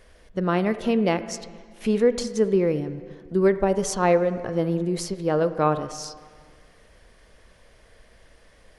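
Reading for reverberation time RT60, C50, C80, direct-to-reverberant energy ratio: 1.8 s, 13.0 dB, 14.0 dB, 12.0 dB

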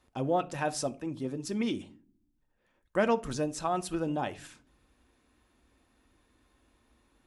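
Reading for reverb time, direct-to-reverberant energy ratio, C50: 0.45 s, 9.0 dB, 20.5 dB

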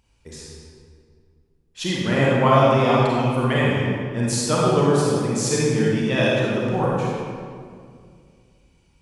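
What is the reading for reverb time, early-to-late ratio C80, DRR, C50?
2.2 s, -0.5 dB, -5.5 dB, -3.5 dB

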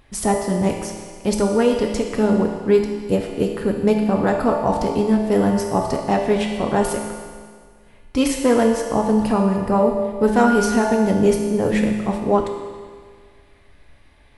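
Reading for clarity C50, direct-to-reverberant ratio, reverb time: 3.5 dB, 1.0 dB, 1.8 s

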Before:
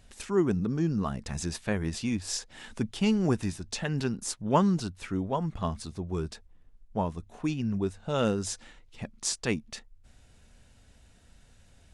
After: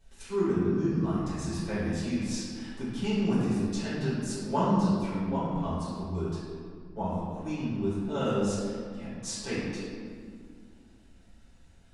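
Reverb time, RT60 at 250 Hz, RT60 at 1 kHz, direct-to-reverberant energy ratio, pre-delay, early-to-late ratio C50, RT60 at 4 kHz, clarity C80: 2.1 s, 3.1 s, 2.0 s, -12.5 dB, 3 ms, -2.5 dB, 1.2 s, 0.5 dB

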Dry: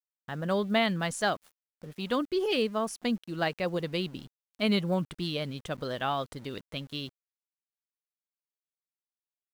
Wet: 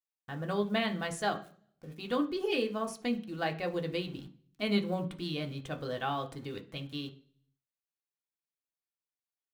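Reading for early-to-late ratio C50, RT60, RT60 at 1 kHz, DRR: 14.5 dB, 0.45 s, 0.40 s, 2.0 dB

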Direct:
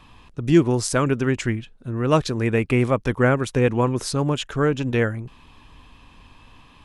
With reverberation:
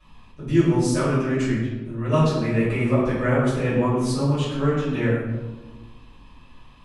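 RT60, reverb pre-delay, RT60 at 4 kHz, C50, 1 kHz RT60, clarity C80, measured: 1.3 s, 3 ms, 0.75 s, 0.0 dB, 1.1 s, 2.5 dB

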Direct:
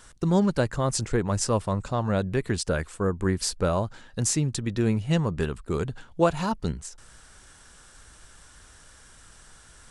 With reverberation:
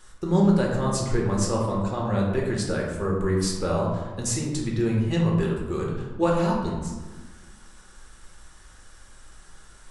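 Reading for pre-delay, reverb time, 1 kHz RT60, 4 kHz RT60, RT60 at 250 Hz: 3 ms, 1.3 s, 1.3 s, 0.65 s, 1.8 s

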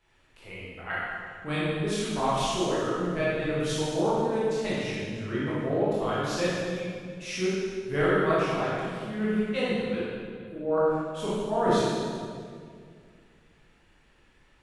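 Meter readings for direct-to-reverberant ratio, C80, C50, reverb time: -9.5 dB, -1.0 dB, -4.0 dB, 2.1 s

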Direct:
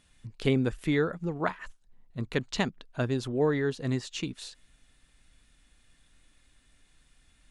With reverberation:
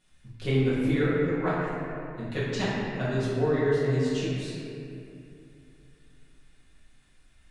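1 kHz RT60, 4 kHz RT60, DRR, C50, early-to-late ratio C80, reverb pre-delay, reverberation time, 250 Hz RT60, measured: 2.4 s, 1.6 s, -11.5 dB, -2.5 dB, -0.5 dB, 5 ms, 2.7 s, 3.1 s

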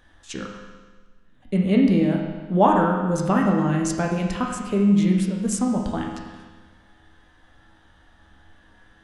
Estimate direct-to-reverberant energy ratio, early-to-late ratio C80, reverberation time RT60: -0.5 dB, 4.5 dB, 1.4 s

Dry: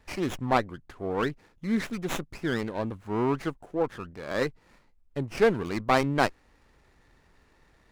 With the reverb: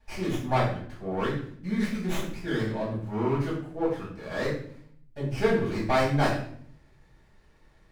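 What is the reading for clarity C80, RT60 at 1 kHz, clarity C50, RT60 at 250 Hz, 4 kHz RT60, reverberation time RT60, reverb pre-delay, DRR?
7.5 dB, 0.55 s, 4.0 dB, 0.90 s, 0.50 s, 0.60 s, 3 ms, -9.0 dB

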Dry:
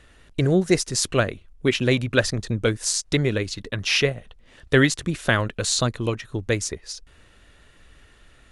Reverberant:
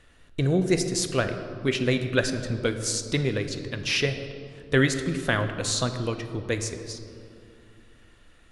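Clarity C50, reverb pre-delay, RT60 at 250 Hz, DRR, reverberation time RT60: 9.0 dB, 4 ms, 3.4 s, 7.0 dB, 2.6 s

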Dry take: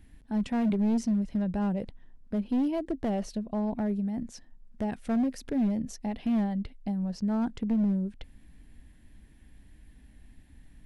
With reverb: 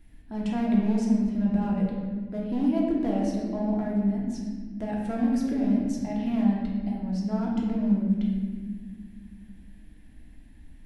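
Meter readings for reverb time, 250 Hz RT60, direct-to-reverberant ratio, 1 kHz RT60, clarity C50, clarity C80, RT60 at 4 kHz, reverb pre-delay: 1.7 s, 3.0 s, -4.0 dB, 1.4 s, 1.0 dB, 3.0 dB, 1.1 s, 3 ms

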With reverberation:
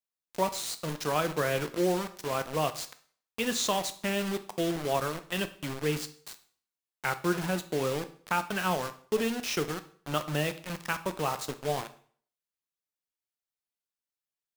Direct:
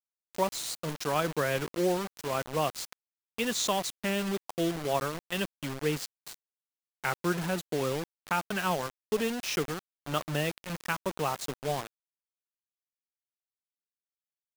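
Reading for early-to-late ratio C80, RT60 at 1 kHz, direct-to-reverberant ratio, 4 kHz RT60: 18.5 dB, 0.50 s, 10.0 dB, 0.45 s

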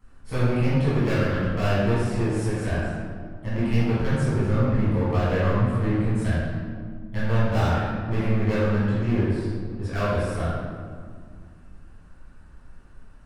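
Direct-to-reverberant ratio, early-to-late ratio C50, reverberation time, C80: -11.5 dB, -3.5 dB, 2.1 s, -0.5 dB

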